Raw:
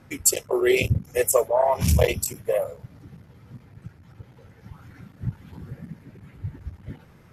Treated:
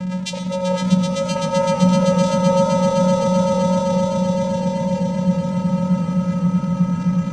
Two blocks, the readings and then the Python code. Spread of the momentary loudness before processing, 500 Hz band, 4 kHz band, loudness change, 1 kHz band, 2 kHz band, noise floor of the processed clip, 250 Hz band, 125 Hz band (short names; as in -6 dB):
20 LU, +6.0 dB, +6.5 dB, +4.5 dB, +9.0 dB, -0.5 dB, -25 dBFS, +16.5 dB, +10.0 dB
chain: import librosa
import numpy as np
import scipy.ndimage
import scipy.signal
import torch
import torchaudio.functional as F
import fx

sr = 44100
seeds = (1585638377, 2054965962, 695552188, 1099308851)

y = x + 0.5 * 10.0 ** (-19.5 / 20.0) * np.sign(x)
y = fx.bass_treble(y, sr, bass_db=3, treble_db=5)
y = fx.vocoder(y, sr, bands=4, carrier='square', carrier_hz=183.0)
y = fx.echo_swell(y, sr, ms=128, loudest=8, wet_db=-5.0)
y = fx.echo_warbled(y, sr, ms=85, feedback_pct=49, rate_hz=2.8, cents=148, wet_db=-14.5)